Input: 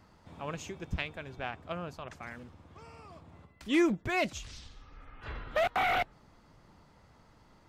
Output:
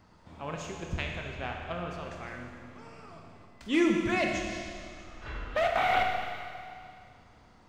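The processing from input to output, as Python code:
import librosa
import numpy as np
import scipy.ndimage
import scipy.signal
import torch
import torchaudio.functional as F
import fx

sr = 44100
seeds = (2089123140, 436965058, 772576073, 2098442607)

y = fx.peak_eq(x, sr, hz=12000.0, db=-14.5, octaves=0.29)
y = fx.rev_schroeder(y, sr, rt60_s=2.3, comb_ms=25, drr_db=1.0)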